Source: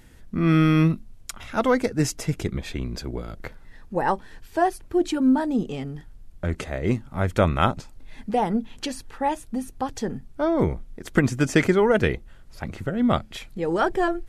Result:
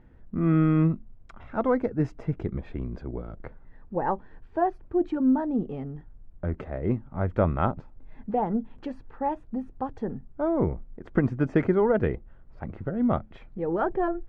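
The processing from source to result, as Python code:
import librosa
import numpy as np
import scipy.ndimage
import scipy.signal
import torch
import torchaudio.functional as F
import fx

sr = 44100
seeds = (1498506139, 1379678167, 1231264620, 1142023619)

y = scipy.signal.sosfilt(scipy.signal.butter(2, 1200.0, 'lowpass', fs=sr, output='sos'), x)
y = F.gain(torch.from_numpy(y), -3.0).numpy()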